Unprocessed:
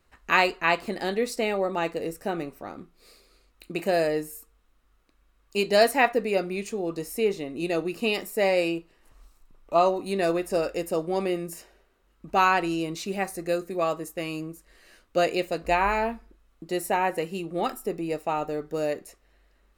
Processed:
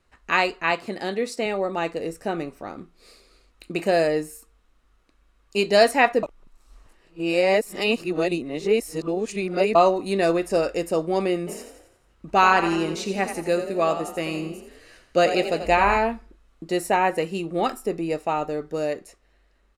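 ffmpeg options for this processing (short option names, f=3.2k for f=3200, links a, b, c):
-filter_complex "[0:a]asettb=1/sr,asplit=3[a][b][c];[a]atrim=end=0.714[d];[b]atrim=start=0.71:end=1.46,asetpts=PTS-STARTPTS,afade=t=in:d=0.004:c=qsin,afade=t=out:st=0.746:d=0.004:c=qsin,highpass=f=64:w=0.5412,highpass=f=64:w=1.3066[e];[c]atrim=start=1.456[f];[d][e]acrossfade=d=0.004:c1=hsin:c2=qsin[g];[g][f]acrossfade=d=0.004:c1=qsin:c2=hsin,asplit=3[h][i][j];[h]afade=t=out:st=11.46:d=0.02[k];[i]asplit=7[l][m][n][o][p][q][r];[m]adelay=86,afreqshift=32,volume=-9.5dB[s];[n]adelay=172,afreqshift=64,volume=-15.3dB[t];[o]adelay=258,afreqshift=96,volume=-21.2dB[u];[p]adelay=344,afreqshift=128,volume=-27dB[v];[q]adelay=430,afreqshift=160,volume=-32.9dB[w];[r]adelay=516,afreqshift=192,volume=-38.7dB[x];[l][s][t][u][v][w][x]amix=inputs=7:normalize=0,afade=t=in:st=11.46:d=0.02,afade=t=out:st=15.97:d=0.02[y];[j]afade=t=in:st=15.97:d=0.02[z];[k][y][z]amix=inputs=3:normalize=0,asplit=3[aa][ab][ac];[aa]atrim=end=6.232[ad];[ab]atrim=start=6.228:end=9.752,asetpts=PTS-STARTPTS,areverse[ae];[ac]atrim=start=9.748[af];[ad][ae]acrossfade=d=0.004:c1=hsin:c2=hsin[ag];[ag][af]acrossfade=d=0.004:c1=hsin:c2=hsin,lowpass=10k,dynaudnorm=f=330:g=13:m=4.5dB"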